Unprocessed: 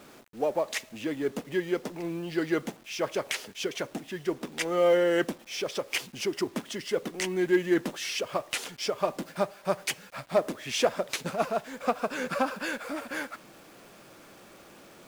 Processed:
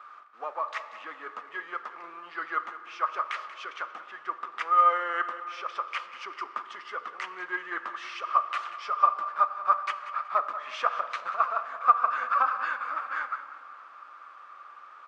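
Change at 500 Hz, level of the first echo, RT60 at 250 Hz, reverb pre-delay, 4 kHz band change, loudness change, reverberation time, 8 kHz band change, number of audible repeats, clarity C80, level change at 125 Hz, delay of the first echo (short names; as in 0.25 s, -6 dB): -13.5 dB, -14.5 dB, 3.8 s, 4 ms, -9.0 dB, +1.0 dB, 2.7 s, under -15 dB, 2, 10.5 dB, under -30 dB, 0.186 s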